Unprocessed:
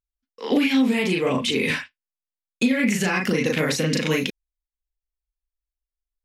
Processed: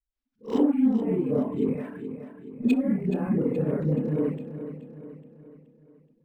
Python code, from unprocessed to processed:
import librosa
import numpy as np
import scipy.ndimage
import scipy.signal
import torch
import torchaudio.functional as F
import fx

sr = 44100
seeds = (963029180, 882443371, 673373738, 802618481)

p1 = fx.frame_reverse(x, sr, frame_ms=130.0)
p2 = fx.dereverb_blind(p1, sr, rt60_s=0.79)
p3 = fx.env_lowpass_down(p2, sr, base_hz=490.0, full_db=-26.0)
p4 = 10.0 ** (-24.0 / 20.0) * np.tanh(p3 / 10.0 ** (-24.0 / 20.0))
p5 = p3 + F.gain(torch.from_numpy(p4), -4.0).numpy()
p6 = fx.dispersion(p5, sr, late='highs', ms=132.0, hz=320.0)
p7 = p6 + fx.echo_feedback(p6, sr, ms=425, feedback_pct=48, wet_db=-11, dry=0)
y = np.interp(np.arange(len(p7)), np.arange(len(p7))[::4], p7[::4])